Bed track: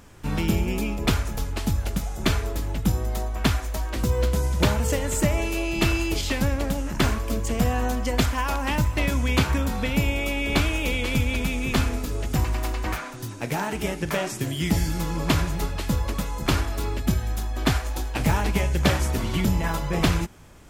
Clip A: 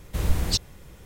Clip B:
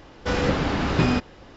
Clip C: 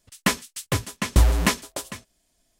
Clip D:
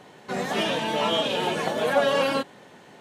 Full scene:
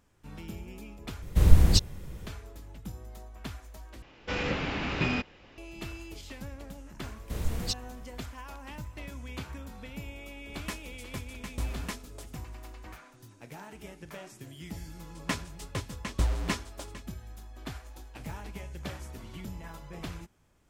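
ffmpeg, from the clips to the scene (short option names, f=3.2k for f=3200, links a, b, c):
-filter_complex "[1:a]asplit=2[a][b];[3:a]asplit=2[c][d];[0:a]volume=-18.5dB[e];[a]lowshelf=f=350:g=8[f];[2:a]equalizer=f=2.5k:w=1.9:g=10[g];[d]equalizer=f=13k:t=o:w=0.8:g=-10[h];[e]asplit=3[i][j][k];[i]atrim=end=1.224[l];[f]atrim=end=1.05,asetpts=PTS-STARTPTS,volume=-1.5dB[m];[j]atrim=start=2.266:end=4.024[n];[g]atrim=end=1.56,asetpts=PTS-STARTPTS,volume=-9.5dB[o];[k]atrim=start=5.576[p];[b]atrim=end=1.05,asetpts=PTS-STARTPTS,volume=-8dB,afade=t=in:d=0.004:c=hsin,afade=t=out:st=1.046:d=0.004:c=hsin,adelay=7160[q];[c]atrim=end=2.59,asetpts=PTS-STARTPTS,volume=-17dB,afade=t=in:d=0.004:c=hsin,afade=t=out:st=2.586:d=0.004:c=hsin,adelay=459522S[r];[h]atrim=end=2.59,asetpts=PTS-STARTPTS,volume=-10.5dB,afade=t=in:d=0.004:c=hsin,afade=t=out:st=2.586:d=0.004:c=hsin,adelay=15030[s];[l][m]acrossfade=d=0.004:c1=hsin:c2=hsin[t];[t][n]acrossfade=d=0.004:c1=hsin:c2=hsin[u];[u][o]acrossfade=d=0.004:c1=hsin:c2=hsin[v];[v][p]acrossfade=d=0.004:c1=hsin:c2=hsin[w];[w][q][r][s]amix=inputs=4:normalize=0"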